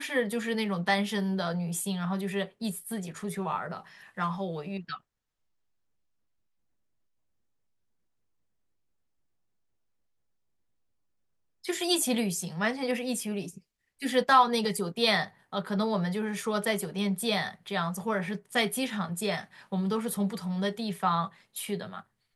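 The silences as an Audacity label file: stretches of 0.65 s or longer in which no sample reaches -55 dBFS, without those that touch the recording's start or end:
5.010000	11.640000	silence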